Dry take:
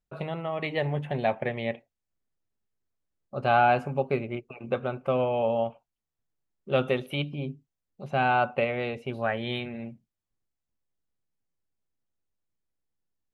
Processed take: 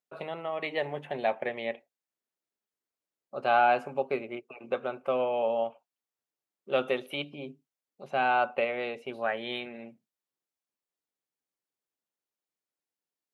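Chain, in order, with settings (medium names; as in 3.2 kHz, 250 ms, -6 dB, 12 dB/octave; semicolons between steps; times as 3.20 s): high-pass 320 Hz 12 dB/octave; trim -1.5 dB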